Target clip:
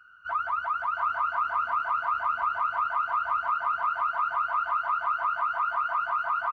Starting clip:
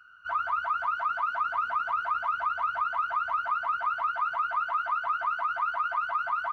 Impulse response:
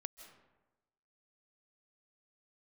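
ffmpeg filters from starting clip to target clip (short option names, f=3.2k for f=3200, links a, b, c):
-filter_complex "[0:a]aecho=1:1:675:0.668,asplit=2[a][b];[1:a]atrim=start_sample=2205,lowpass=2.8k[c];[b][c]afir=irnorm=-1:irlink=0,volume=-1dB[d];[a][d]amix=inputs=2:normalize=0,volume=-3dB"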